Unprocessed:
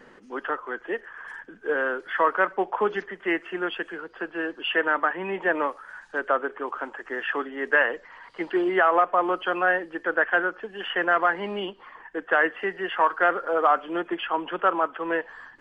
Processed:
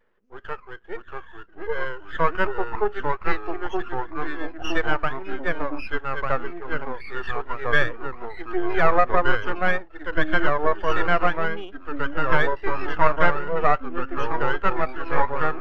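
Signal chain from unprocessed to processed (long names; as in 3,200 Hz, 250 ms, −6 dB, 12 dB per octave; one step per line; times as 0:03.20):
high-pass filter 130 Hz 24 dB per octave
parametric band 280 Hz −10.5 dB 0.33 octaves
half-wave rectification
delay with pitch and tempo change per echo 578 ms, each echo −2 semitones, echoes 3
every bin expanded away from the loudest bin 1.5 to 1
level +5 dB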